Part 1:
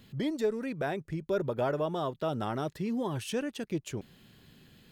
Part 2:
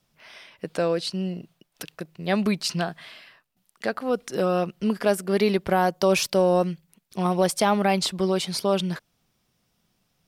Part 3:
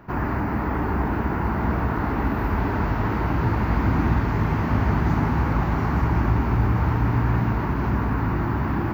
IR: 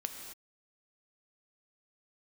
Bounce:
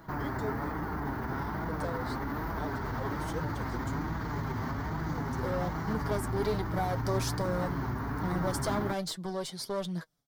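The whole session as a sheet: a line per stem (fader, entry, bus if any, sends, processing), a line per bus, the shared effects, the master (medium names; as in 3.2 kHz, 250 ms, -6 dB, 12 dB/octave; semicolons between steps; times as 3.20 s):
-3.0 dB, 0.00 s, muted 0.75–2.50 s, no send, steep high-pass 340 Hz
-4.5 dB, 1.05 s, no send, expander -53 dBFS; one-sided clip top -24 dBFS; auto duck -21 dB, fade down 0.65 s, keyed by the first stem
-1.5 dB, 0.00 s, no send, treble shelf 2.2 kHz +10.5 dB; peak limiter -20 dBFS, peak gain reduction 11 dB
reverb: none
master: peaking EQ 2.6 kHz -13.5 dB 0.41 oct; flange 1.2 Hz, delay 6 ms, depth 2 ms, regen +41%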